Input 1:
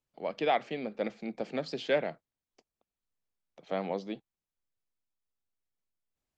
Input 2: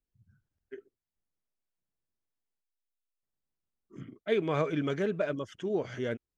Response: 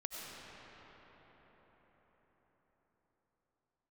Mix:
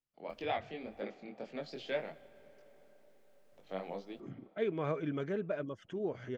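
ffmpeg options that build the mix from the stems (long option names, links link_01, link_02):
-filter_complex "[0:a]highshelf=frequency=2200:gain=9.5,flanger=delay=20:depth=4.7:speed=1.9,volume=-6.5dB,asplit=2[link_01][link_02];[link_02]volume=-17dB[link_03];[1:a]acompressor=mode=upward:threshold=-35dB:ratio=2.5,adelay=300,volume=-5.5dB[link_04];[2:a]atrim=start_sample=2205[link_05];[link_03][link_05]afir=irnorm=-1:irlink=0[link_06];[link_01][link_04][link_06]amix=inputs=3:normalize=0,highshelf=frequency=3600:gain=-12"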